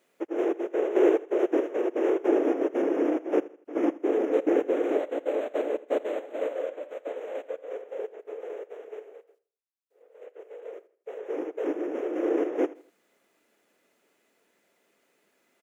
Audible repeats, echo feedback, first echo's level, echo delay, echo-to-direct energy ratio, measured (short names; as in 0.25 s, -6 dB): 2, 35%, -19.0 dB, 81 ms, -18.5 dB